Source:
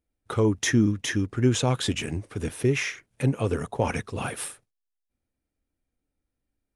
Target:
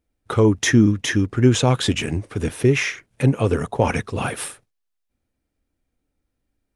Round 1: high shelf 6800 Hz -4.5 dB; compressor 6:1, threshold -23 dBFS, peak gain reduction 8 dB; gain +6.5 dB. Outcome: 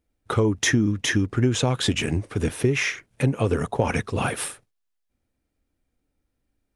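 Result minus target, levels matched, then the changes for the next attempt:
compressor: peak gain reduction +8 dB
remove: compressor 6:1, threshold -23 dBFS, peak gain reduction 8 dB

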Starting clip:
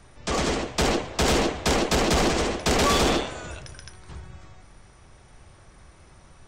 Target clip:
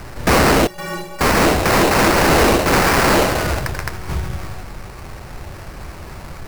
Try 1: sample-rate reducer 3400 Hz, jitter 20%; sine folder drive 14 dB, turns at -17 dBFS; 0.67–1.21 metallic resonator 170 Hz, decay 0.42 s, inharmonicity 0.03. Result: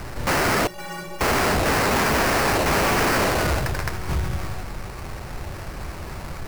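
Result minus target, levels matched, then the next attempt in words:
sine folder: distortion +8 dB
sample-rate reducer 3400 Hz, jitter 20%; sine folder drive 14 dB, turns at -9.5 dBFS; 0.67–1.21 metallic resonator 170 Hz, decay 0.42 s, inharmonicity 0.03

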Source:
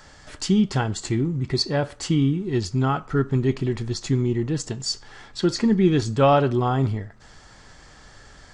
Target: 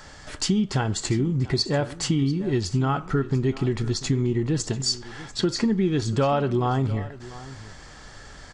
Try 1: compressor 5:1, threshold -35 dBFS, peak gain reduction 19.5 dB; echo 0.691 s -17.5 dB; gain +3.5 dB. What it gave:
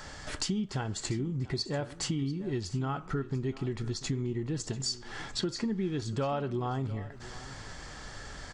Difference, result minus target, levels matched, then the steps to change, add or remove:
compressor: peak gain reduction +9.5 dB
change: compressor 5:1, threshold -23 dBFS, peak gain reduction 10 dB

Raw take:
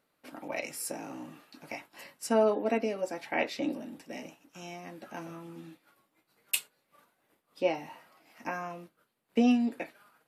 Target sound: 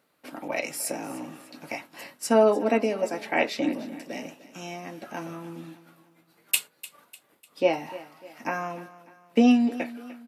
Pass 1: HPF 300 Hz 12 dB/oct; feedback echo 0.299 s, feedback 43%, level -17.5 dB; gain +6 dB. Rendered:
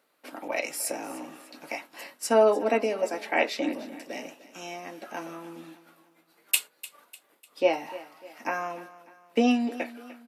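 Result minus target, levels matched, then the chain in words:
125 Hz band -6.5 dB
HPF 89 Hz 12 dB/oct; feedback echo 0.299 s, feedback 43%, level -17.5 dB; gain +6 dB

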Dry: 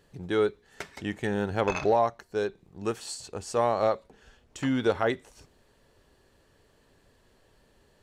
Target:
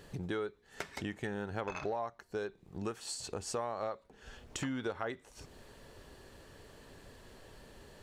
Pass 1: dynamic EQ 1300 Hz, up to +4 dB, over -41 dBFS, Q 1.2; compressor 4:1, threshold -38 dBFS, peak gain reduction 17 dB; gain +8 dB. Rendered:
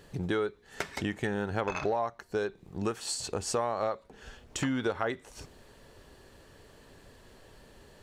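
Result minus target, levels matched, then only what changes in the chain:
compressor: peak gain reduction -7 dB
change: compressor 4:1, threshold -47 dBFS, peak gain reduction 23.5 dB

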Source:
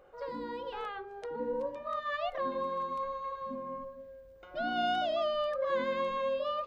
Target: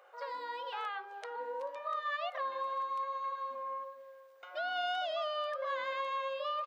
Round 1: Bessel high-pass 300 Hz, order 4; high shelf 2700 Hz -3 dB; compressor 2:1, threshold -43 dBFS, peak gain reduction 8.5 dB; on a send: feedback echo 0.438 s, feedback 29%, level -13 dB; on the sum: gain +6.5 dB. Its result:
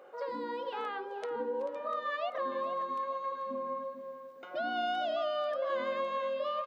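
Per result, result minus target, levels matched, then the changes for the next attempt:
250 Hz band +19.5 dB; echo-to-direct +11.5 dB
change: Bessel high-pass 930 Hz, order 4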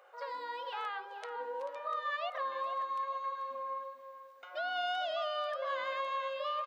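echo-to-direct +11.5 dB
change: feedback echo 0.438 s, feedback 29%, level -24.5 dB

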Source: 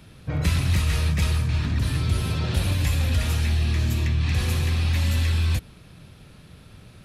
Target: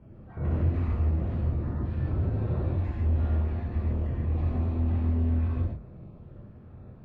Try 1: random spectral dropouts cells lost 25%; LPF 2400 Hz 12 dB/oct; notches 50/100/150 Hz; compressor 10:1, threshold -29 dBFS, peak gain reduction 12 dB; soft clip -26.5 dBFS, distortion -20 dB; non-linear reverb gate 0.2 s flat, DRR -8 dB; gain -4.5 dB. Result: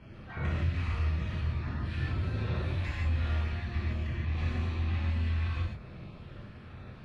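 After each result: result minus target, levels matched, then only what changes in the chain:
2000 Hz band +14.0 dB; compressor: peak gain reduction +12 dB
change: LPF 720 Hz 12 dB/oct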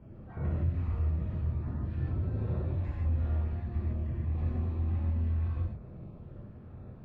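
compressor: peak gain reduction +12 dB
remove: compressor 10:1, threshold -29 dBFS, peak gain reduction 12 dB

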